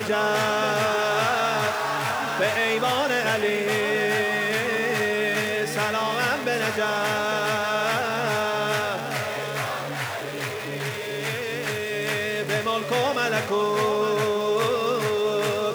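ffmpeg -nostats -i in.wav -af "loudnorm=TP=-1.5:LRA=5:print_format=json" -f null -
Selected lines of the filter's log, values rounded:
"input_i" : "-23.8",
"input_tp" : "-10.1",
"input_lra" : "3.8",
"input_thresh" : "-33.8",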